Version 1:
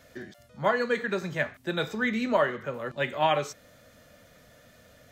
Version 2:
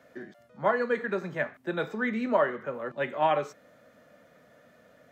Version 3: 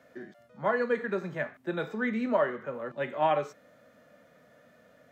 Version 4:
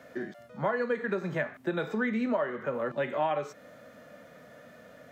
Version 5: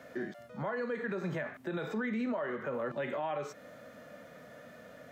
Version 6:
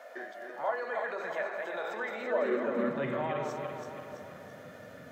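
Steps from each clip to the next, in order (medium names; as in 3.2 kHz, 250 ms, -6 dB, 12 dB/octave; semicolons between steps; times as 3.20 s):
three-band isolator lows -19 dB, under 150 Hz, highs -12 dB, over 2.1 kHz
harmonic-percussive split percussive -4 dB
compression 4:1, threshold -35 dBFS, peak gain reduction 12 dB; trim +7.5 dB
peak limiter -27.5 dBFS, peak gain reduction 10.5 dB
backward echo that repeats 167 ms, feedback 71%, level -4 dB; high-pass sweep 690 Hz -> 95 Hz, 2.19–3.31 s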